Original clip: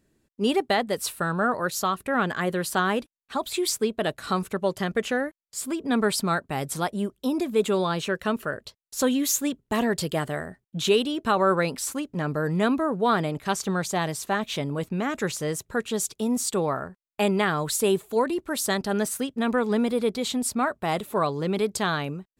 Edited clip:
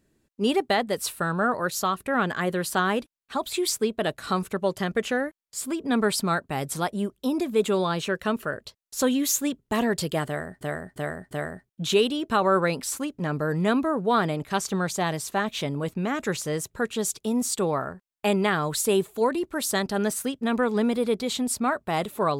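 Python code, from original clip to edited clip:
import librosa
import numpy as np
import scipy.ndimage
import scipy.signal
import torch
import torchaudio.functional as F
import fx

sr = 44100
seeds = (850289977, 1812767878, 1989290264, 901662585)

y = fx.edit(x, sr, fx.repeat(start_s=10.26, length_s=0.35, count=4), tone=tone)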